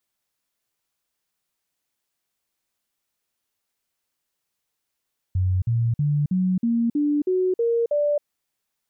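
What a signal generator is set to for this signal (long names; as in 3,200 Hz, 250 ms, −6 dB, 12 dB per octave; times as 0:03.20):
stepped sweep 92.4 Hz up, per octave 3, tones 9, 0.27 s, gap 0.05 s −18 dBFS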